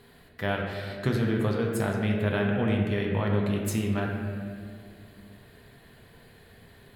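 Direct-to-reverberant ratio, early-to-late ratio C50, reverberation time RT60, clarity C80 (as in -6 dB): -0.5 dB, 2.0 dB, 2.1 s, 3.5 dB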